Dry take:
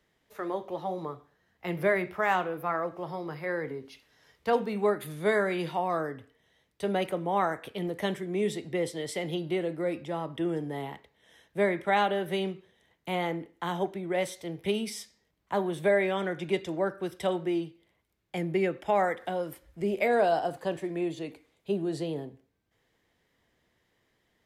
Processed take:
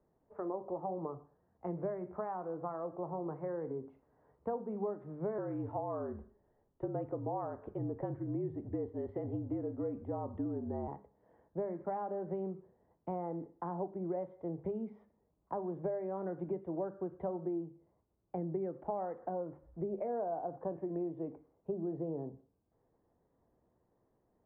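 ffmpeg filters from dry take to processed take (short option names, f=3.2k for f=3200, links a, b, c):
-filter_complex "[0:a]asettb=1/sr,asplit=3[a][b][c];[a]atrim=end=5.384[d];[b]atrim=start=5.38:end=10.88,asetpts=PTS-STARTPTS,afade=t=in:d=0.004:c=qsin,afade=t=out:st=5.496:d=0.004:c=qsin,afreqshift=-51[e];[c]atrim=start=10.876[f];[d][e]acrossfade=d=0.004:c1=hsin:c2=qsin[g];[g][f]acrossfade=d=0.004:c1=qsin:c2=hsin,acompressor=threshold=-34dB:ratio=6,lowpass=f=1k:w=0.5412,lowpass=f=1k:w=1.3066,bandreject=f=50:t=h:w=6,bandreject=f=100:t=h:w=6,bandreject=f=150:t=h:w=6,bandreject=f=200:t=h:w=6"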